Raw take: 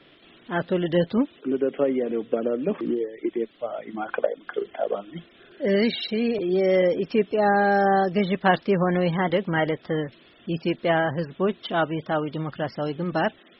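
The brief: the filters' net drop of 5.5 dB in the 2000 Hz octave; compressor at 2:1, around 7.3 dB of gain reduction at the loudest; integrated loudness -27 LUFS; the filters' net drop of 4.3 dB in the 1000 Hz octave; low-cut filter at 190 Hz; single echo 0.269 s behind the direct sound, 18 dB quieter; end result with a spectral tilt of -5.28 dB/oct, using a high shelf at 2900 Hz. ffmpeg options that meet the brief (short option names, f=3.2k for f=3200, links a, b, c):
-af "highpass=190,equalizer=f=1k:t=o:g=-5,equalizer=f=2k:t=o:g=-3,highshelf=f=2.9k:g=-6.5,acompressor=threshold=-31dB:ratio=2,aecho=1:1:269:0.126,volume=5.5dB"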